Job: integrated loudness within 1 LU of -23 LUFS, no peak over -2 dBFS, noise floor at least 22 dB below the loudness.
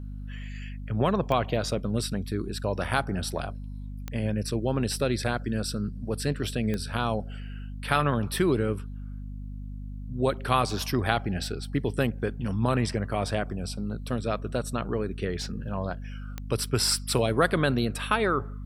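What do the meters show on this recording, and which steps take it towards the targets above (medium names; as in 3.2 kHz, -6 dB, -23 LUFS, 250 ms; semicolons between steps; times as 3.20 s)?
clicks found 4; hum 50 Hz; highest harmonic 250 Hz; hum level -34 dBFS; loudness -28.5 LUFS; peak level -5.5 dBFS; loudness target -23.0 LUFS
-> de-click; de-hum 50 Hz, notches 5; trim +5.5 dB; peak limiter -2 dBFS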